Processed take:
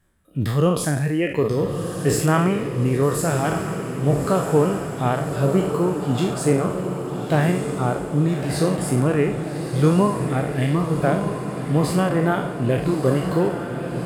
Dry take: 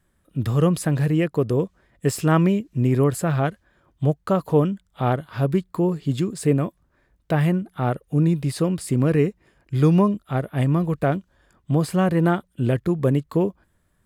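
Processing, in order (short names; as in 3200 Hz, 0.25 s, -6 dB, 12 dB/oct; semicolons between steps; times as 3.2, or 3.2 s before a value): spectral trails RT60 1.44 s; reverb removal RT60 1 s; on a send: diffused feedback echo 1.23 s, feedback 61%, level -7 dB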